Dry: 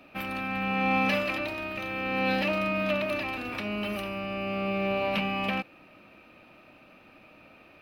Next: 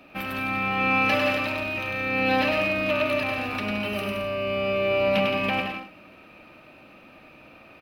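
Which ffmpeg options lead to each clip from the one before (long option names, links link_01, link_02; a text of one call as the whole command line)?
ffmpeg -i in.wav -af "aecho=1:1:100|170|219|253.3|277.3:0.631|0.398|0.251|0.158|0.1,volume=2.5dB" out.wav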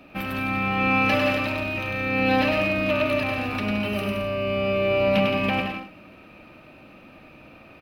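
ffmpeg -i in.wav -af "lowshelf=frequency=300:gain=6.5" out.wav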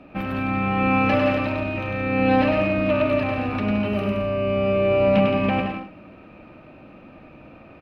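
ffmpeg -i in.wav -af "lowpass=frequency=1200:poles=1,volume=4dB" out.wav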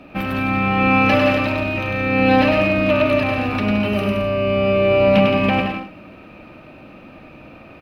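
ffmpeg -i in.wav -af "highshelf=frequency=3400:gain=10,volume=3.5dB" out.wav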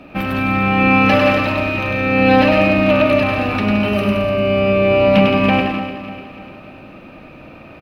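ffmpeg -i in.wav -af "aecho=1:1:297|594|891|1188|1485:0.251|0.116|0.0532|0.0244|0.0112,volume=2.5dB" out.wav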